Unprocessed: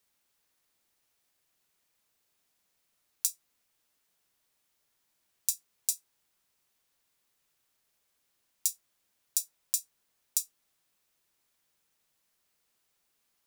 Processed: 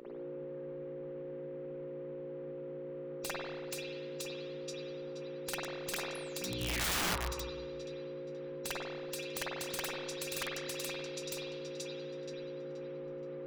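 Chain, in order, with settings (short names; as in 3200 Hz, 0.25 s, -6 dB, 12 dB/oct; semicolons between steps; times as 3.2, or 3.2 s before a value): on a send: thinning echo 0.477 s, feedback 59%, high-pass 1100 Hz, level -4.5 dB; on the sum: painted sound fall, 6.15–7, 970–11000 Hz -25 dBFS; high shelf 2500 Hz +8 dB; compressor 16:1, threshold -22 dBFS, peak gain reduction 8.5 dB; low-pass opened by the level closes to 1100 Hz, open at -30.5 dBFS; buzz 60 Hz, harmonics 9, -50 dBFS -8 dB/oct; air absorption 260 m; spectral gate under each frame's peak -20 dB weak; spring tank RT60 1.3 s, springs 48/53 ms, chirp 55 ms, DRR -7.5 dB; wrapped overs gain 44.5 dB; gain +16.5 dB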